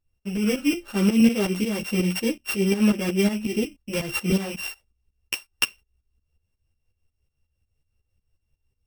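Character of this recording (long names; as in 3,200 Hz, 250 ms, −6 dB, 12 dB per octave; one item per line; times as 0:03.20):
a buzz of ramps at a fixed pitch in blocks of 16 samples
tremolo saw up 5.5 Hz, depth 80%
a shimmering, thickened sound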